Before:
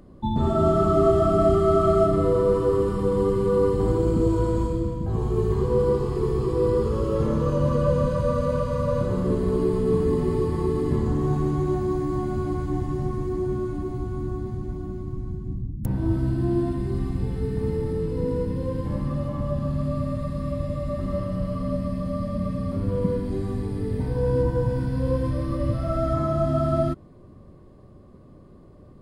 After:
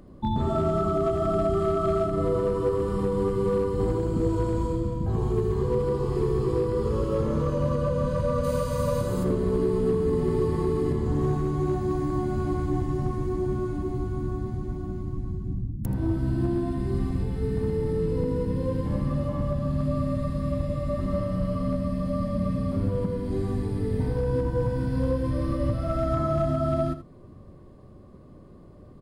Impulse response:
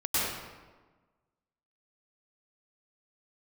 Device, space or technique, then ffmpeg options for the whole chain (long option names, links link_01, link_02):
limiter into clipper: -filter_complex "[0:a]asplit=3[link_01][link_02][link_03];[link_01]afade=type=out:start_time=8.43:duration=0.02[link_04];[link_02]aemphasis=mode=production:type=75fm,afade=type=in:start_time=8.43:duration=0.02,afade=type=out:start_time=9.23:duration=0.02[link_05];[link_03]afade=type=in:start_time=9.23:duration=0.02[link_06];[link_04][link_05][link_06]amix=inputs=3:normalize=0,alimiter=limit=-15.5dB:level=0:latency=1:release=344,asoftclip=type=hard:threshold=-17dB,aecho=1:1:80:0.237"